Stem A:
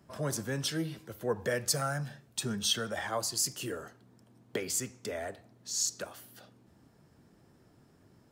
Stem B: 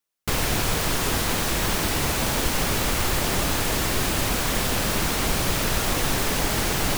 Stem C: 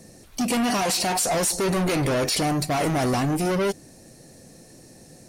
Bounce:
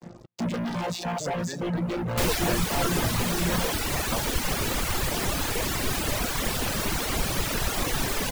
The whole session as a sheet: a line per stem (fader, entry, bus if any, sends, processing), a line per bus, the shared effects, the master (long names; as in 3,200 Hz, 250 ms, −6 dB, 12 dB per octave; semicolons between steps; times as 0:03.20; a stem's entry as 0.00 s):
−0.5 dB, 1.00 s, no send, pitch vibrato 0.48 Hz 27 cents; Butterworth low-pass 2,700 Hz
−1.0 dB, 1.90 s, no send, no processing
−11.5 dB, 0.00 s, no send, channel vocoder with a chord as carrier bare fifth, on A#2; leveller curve on the samples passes 5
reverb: not used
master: reverb reduction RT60 1.1 s